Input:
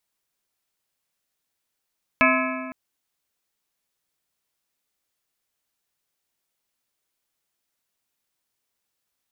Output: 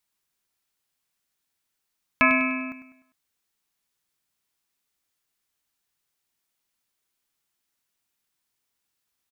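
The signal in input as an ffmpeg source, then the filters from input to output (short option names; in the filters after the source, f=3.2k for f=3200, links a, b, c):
-f lavfi -i "aevalsrc='0.0891*pow(10,-3*t/2.09)*sin(2*PI*259*t)+0.0891*pow(10,-3*t/1.588)*sin(2*PI*647.5*t)+0.0891*pow(10,-3*t/1.379)*sin(2*PI*1036*t)+0.0891*pow(10,-3*t/1.29)*sin(2*PI*1295*t)+0.0891*pow(10,-3*t/1.192)*sin(2*PI*1683.5*t)+0.0891*pow(10,-3*t/1.1)*sin(2*PI*2201.5*t)+0.0891*pow(10,-3*t/1.081)*sin(2*PI*2331*t)+0.0891*pow(10,-3*t/1.047)*sin(2*PI*2590*t)':d=0.51:s=44100"
-af "equalizer=f=560:t=o:w=0.73:g=-5,aecho=1:1:100|200|300|400:0.251|0.111|0.0486|0.0214"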